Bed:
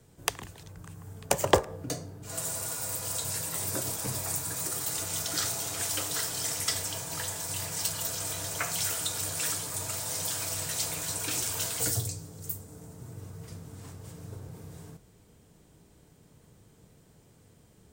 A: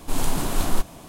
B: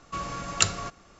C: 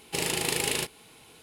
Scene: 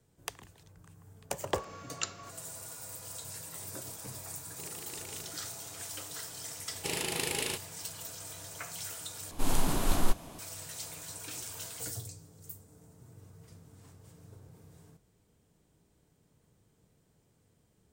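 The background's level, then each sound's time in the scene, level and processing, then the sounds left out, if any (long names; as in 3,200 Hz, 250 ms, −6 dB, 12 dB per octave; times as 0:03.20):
bed −10.5 dB
0:01.41: mix in B −13 dB + Butterworth high-pass 190 Hz 72 dB per octave
0:04.45: mix in C −18 dB + adaptive Wiener filter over 25 samples
0:06.71: mix in C −5.5 dB
0:09.31: overwrite with A −4.5 dB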